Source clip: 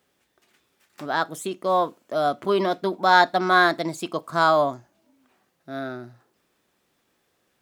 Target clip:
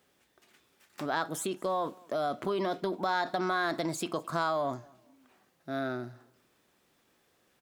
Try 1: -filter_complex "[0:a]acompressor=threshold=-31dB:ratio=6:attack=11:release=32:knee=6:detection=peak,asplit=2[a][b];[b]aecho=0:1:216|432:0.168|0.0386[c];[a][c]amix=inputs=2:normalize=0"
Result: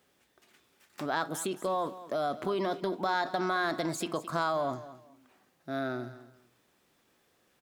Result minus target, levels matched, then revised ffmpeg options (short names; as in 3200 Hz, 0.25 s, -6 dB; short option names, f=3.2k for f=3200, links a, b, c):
echo-to-direct +10 dB
-filter_complex "[0:a]acompressor=threshold=-31dB:ratio=6:attack=11:release=32:knee=6:detection=peak,asplit=2[a][b];[b]aecho=0:1:216|432:0.0531|0.0122[c];[a][c]amix=inputs=2:normalize=0"